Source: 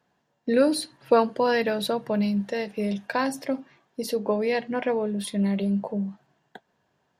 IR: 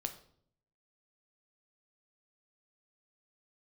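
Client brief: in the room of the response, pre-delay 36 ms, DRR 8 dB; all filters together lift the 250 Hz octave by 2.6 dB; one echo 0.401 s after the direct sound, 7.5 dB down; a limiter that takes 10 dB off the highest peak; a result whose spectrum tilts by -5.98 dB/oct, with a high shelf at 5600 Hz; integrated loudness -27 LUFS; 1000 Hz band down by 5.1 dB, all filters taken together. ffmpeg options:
-filter_complex "[0:a]equalizer=f=250:t=o:g=3.5,equalizer=f=1k:t=o:g=-7,highshelf=f=5.6k:g=-7,alimiter=limit=-18dB:level=0:latency=1,aecho=1:1:401:0.422,asplit=2[a][b];[1:a]atrim=start_sample=2205,adelay=36[c];[b][c]afir=irnorm=-1:irlink=0,volume=-7.5dB[d];[a][d]amix=inputs=2:normalize=0,volume=-0.5dB"

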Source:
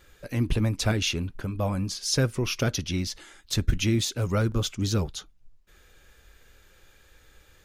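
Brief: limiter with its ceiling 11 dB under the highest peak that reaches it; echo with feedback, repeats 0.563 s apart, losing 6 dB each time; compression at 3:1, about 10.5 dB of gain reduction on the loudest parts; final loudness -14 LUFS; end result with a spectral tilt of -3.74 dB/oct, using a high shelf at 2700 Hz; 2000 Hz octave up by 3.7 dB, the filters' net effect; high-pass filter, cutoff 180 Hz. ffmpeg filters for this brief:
-af "highpass=180,equalizer=f=2k:t=o:g=8,highshelf=f=2.7k:g=-5.5,acompressor=threshold=-35dB:ratio=3,alimiter=level_in=6.5dB:limit=-24dB:level=0:latency=1,volume=-6.5dB,aecho=1:1:563|1126|1689|2252|2815|3378:0.501|0.251|0.125|0.0626|0.0313|0.0157,volume=26dB"

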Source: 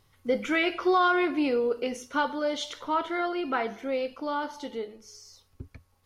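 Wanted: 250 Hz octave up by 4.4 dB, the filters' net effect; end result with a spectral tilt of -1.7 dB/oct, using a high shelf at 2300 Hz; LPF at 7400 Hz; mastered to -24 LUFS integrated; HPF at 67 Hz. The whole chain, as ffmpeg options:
-af "highpass=67,lowpass=7.4k,equalizer=f=250:t=o:g=6,highshelf=f=2.3k:g=4,volume=2dB"

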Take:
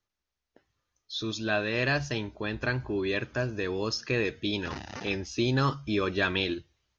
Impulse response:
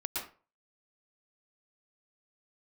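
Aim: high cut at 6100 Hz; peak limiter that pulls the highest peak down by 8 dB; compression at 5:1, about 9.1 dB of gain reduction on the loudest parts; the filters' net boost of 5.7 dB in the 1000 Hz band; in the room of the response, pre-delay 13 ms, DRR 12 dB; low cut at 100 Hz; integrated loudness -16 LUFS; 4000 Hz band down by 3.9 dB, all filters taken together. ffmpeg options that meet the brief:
-filter_complex "[0:a]highpass=100,lowpass=6.1k,equalizer=f=1k:t=o:g=7.5,equalizer=f=4k:t=o:g=-4.5,acompressor=threshold=-29dB:ratio=5,alimiter=level_in=2dB:limit=-24dB:level=0:latency=1,volume=-2dB,asplit=2[a][b];[1:a]atrim=start_sample=2205,adelay=13[c];[b][c]afir=irnorm=-1:irlink=0,volume=-15.5dB[d];[a][d]amix=inputs=2:normalize=0,volume=20.5dB"

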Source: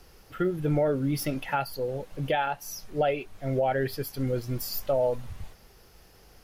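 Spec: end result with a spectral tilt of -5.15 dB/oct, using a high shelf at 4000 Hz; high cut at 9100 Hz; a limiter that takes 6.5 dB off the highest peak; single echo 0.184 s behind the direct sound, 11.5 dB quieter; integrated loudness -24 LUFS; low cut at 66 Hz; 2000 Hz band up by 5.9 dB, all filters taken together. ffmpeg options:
-af "highpass=66,lowpass=9.1k,equalizer=f=2k:t=o:g=6.5,highshelf=f=4k:g=5.5,alimiter=limit=-18.5dB:level=0:latency=1,aecho=1:1:184:0.266,volume=5.5dB"

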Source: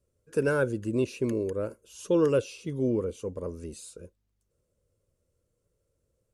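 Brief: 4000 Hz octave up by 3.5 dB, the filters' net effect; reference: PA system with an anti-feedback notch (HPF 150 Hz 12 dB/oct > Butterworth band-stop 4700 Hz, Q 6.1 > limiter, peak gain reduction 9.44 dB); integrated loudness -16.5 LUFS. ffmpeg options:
-af "highpass=150,asuperstop=centerf=4700:order=8:qfactor=6.1,equalizer=f=4k:t=o:g=6,volume=18dB,alimiter=limit=-5.5dB:level=0:latency=1"

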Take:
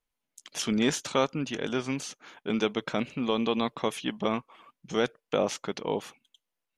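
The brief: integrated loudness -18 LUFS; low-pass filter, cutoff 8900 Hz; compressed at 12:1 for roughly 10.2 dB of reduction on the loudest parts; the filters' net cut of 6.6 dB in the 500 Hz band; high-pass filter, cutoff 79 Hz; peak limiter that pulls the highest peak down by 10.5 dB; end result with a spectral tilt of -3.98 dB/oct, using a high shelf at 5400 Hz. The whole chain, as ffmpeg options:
-af "highpass=79,lowpass=8.9k,equalizer=f=500:t=o:g=-8,highshelf=f=5.4k:g=-5,acompressor=threshold=-34dB:ratio=12,volume=24.5dB,alimiter=limit=-5dB:level=0:latency=1"

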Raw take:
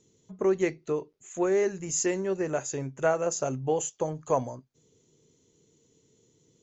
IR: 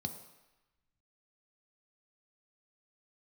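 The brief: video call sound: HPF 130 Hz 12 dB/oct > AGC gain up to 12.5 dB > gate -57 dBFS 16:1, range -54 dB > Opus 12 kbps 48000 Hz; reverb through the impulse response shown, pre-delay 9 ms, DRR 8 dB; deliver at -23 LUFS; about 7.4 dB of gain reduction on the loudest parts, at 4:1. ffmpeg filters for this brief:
-filter_complex "[0:a]acompressor=threshold=-29dB:ratio=4,asplit=2[a][b];[1:a]atrim=start_sample=2205,adelay=9[c];[b][c]afir=irnorm=-1:irlink=0,volume=-7.5dB[d];[a][d]amix=inputs=2:normalize=0,highpass=130,dynaudnorm=m=12.5dB,agate=range=-54dB:threshold=-57dB:ratio=16,volume=10dB" -ar 48000 -c:a libopus -b:a 12k

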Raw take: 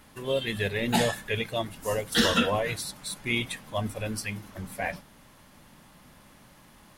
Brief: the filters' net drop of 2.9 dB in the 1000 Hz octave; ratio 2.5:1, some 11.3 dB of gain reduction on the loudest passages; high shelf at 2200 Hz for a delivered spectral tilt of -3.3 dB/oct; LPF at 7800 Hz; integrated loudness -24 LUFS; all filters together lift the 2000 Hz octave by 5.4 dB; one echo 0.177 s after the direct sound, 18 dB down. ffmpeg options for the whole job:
-af "lowpass=7.8k,equalizer=f=1k:t=o:g=-7,equalizer=f=2k:t=o:g=6.5,highshelf=f=2.2k:g=3.5,acompressor=threshold=-34dB:ratio=2.5,aecho=1:1:177:0.126,volume=10dB"

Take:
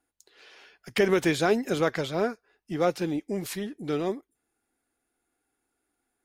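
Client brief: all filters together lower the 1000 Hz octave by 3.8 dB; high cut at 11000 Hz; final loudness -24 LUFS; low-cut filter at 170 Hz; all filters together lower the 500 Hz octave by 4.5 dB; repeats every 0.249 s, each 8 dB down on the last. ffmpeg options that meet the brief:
-af "highpass=170,lowpass=11k,equalizer=f=500:t=o:g=-5,equalizer=f=1k:t=o:g=-3.5,aecho=1:1:249|498|747|996|1245:0.398|0.159|0.0637|0.0255|0.0102,volume=6.5dB"

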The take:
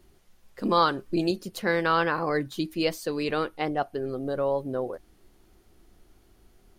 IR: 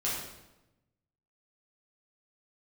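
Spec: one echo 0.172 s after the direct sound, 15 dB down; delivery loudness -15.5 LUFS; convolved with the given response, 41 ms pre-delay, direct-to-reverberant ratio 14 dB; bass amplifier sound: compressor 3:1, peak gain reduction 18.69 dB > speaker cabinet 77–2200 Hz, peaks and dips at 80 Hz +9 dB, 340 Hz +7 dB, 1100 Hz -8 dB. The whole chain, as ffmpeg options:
-filter_complex "[0:a]aecho=1:1:172:0.178,asplit=2[a][b];[1:a]atrim=start_sample=2205,adelay=41[c];[b][c]afir=irnorm=-1:irlink=0,volume=-20.5dB[d];[a][d]amix=inputs=2:normalize=0,acompressor=threshold=-42dB:ratio=3,highpass=f=77:w=0.5412,highpass=f=77:w=1.3066,equalizer=f=80:t=q:w=4:g=9,equalizer=f=340:t=q:w=4:g=7,equalizer=f=1.1k:t=q:w=4:g=-8,lowpass=f=2.2k:w=0.5412,lowpass=f=2.2k:w=1.3066,volume=24dB"

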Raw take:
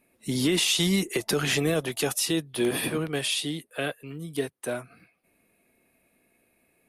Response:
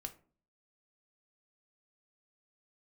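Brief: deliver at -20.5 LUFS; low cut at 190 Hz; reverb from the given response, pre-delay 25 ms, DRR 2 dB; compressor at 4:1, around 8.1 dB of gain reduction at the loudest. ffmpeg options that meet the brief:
-filter_complex "[0:a]highpass=190,acompressor=threshold=-31dB:ratio=4,asplit=2[a][b];[1:a]atrim=start_sample=2205,adelay=25[c];[b][c]afir=irnorm=-1:irlink=0,volume=1.5dB[d];[a][d]amix=inputs=2:normalize=0,volume=11dB"

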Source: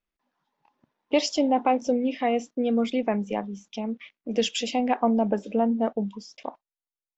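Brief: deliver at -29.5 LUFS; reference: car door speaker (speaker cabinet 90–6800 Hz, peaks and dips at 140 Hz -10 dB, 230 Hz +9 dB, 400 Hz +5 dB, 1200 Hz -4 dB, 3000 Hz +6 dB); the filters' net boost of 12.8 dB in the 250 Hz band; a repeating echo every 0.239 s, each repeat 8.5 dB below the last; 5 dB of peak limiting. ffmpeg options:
-af "equalizer=f=250:t=o:g=6.5,alimiter=limit=-13dB:level=0:latency=1,highpass=90,equalizer=f=140:t=q:w=4:g=-10,equalizer=f=230:t=q:w=4:g=9,equalizer=f=400:t=q:w=4:g=5,equalizer=f=1.2k:t=q:w=4:g=-4,equalizer=f=3k:t=q:w=4:g=6,lowpass=f=6.8k:w=0.5412,lowpass=f=6.8k:w=1.3066,aecho=1:1:239|478|717|956:0.376|0.143|0.0543|0.0206,volume=-12.5dB"

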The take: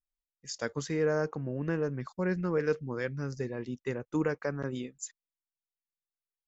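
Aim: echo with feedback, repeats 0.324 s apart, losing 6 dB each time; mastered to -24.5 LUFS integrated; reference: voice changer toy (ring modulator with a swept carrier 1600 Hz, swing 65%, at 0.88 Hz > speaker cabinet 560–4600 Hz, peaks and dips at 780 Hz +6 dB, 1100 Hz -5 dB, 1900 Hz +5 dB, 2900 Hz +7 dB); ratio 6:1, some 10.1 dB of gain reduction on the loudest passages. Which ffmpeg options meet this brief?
-af "acompressor=threshold=-35dB:ratio=6,aecho=1:1:324|648|972|1296|1620|1944:0.501|0.251|0.125|0.0626|0.0313|0.0157,aeval=exprs='val(0)*sin(2*PI*1600*n/s+1600*0.65/0.88*sin(2*PI*0.88*n/s))':c=same,highpass=560,equalizer=f=780:t=q:w=4:g=6,equalizer=f=1.1k:t=q:w=4:g=-5,equalizer=f=1.9k:t=q:w=4:g=5,equalizer=f=2.9k:t=q:w=4:g=7,lowpass=f=4.6k:w=0.5412,lowpass=f=4.6k:w=1.3066,volume=12dB"

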